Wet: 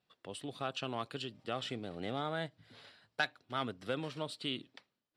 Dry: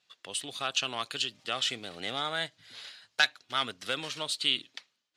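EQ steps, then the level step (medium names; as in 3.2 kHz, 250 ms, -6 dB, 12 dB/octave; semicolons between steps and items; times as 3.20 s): tilt shelf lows +9 dB, about 1.3 kHz; bass shelf 220 Hz +3.5 dB; band-stop 6.5 kHz, Q 6.2; -6.5 dB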